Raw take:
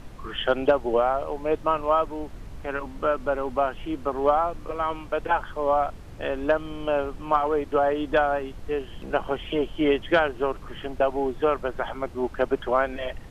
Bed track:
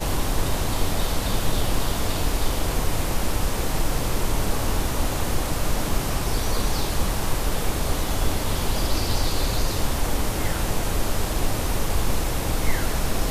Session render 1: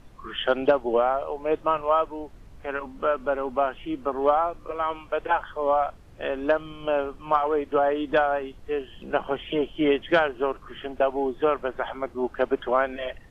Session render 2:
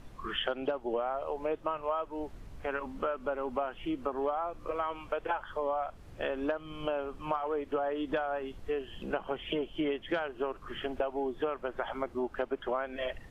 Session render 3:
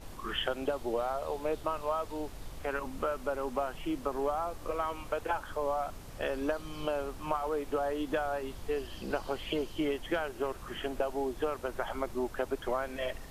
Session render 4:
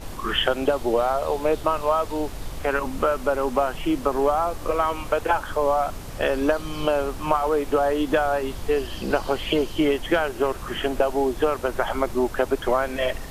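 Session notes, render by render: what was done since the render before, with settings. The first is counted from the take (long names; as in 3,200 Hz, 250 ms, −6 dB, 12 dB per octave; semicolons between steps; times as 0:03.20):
noise reduction from a noise print 8 dB
downward compressor 5 to 1, threshold −30 dBFS, peak gain reduction 14.5 dB
mix in bed track −24 dB
level +11 dB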